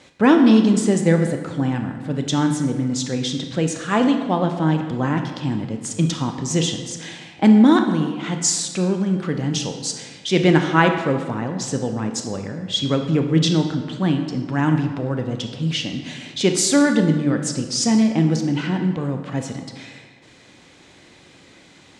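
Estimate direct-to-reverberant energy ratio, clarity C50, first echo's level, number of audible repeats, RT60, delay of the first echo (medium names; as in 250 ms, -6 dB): 5.0 dB, 7.0 dB, no echo, no echo, 1.6 s, no echo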